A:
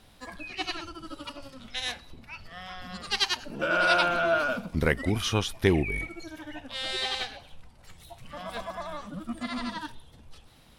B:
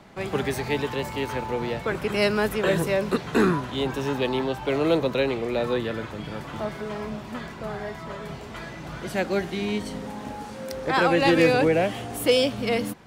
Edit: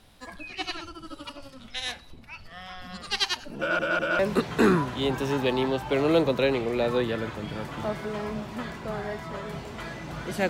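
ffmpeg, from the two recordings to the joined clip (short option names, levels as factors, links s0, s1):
-filter_complex "[0:a]apad=whole_dur=10.49,atrim=end=10.49,asplit=3[s0][s1][s2];[s0]atrim=end=3.792[s3];[s1]atrim=start=3.588:end=3.792[s4];[s2]atrim=start=3.588:end=3.792[s5];[1:a]atrim=start=2.948:end=9.25[s6];[s3][s4]acrossfade=d=0.004:c1=hsin:c2=hsin[s7];[s7][s5]acrossfade=d=0.004:c1=hsin:c2=hsin[s8];[s8][s6]acrossfade=d=0.004:c1=hsin:c2=hsin"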